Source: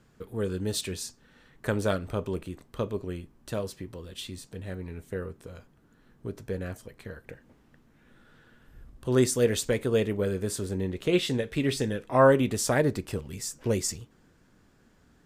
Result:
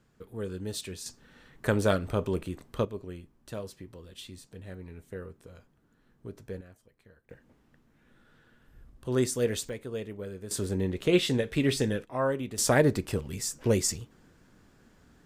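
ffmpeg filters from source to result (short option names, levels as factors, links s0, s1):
-af "asetnsamples=n=441:p=0,asendcmd='1.06 volume volume 2dB;2.85 volume volume -6dB;6.61 volume volume -17dB;7.31 volume volume -4dB;9.69 volume volume -11dB;10.51 volume volume 1dB;12.05 volume volume -9.5dB;12.58 volume volume 2dB',volume=0.531"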